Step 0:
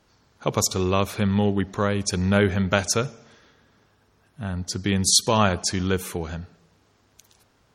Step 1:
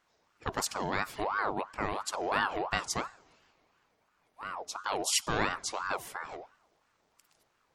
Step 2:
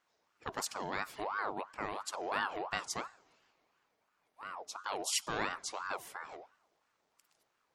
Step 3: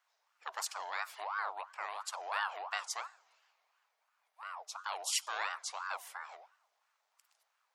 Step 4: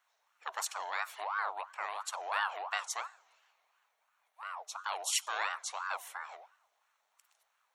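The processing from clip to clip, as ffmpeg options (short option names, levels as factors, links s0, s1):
-af "aeval=exprs='val(0)*sin(2*PI*930*n/s+930*0.45/2.9*sin(2*PI*2.9*n/s))':c=same,volume=0.398"
-af "lowshelf=f=140:g=-10,volume=0.562"
-af "highpass=f=690:w=0.5412,highpass=f=690:w=1.3066"
-af "bandreject=f=4900:w=6.1,volume=1.33"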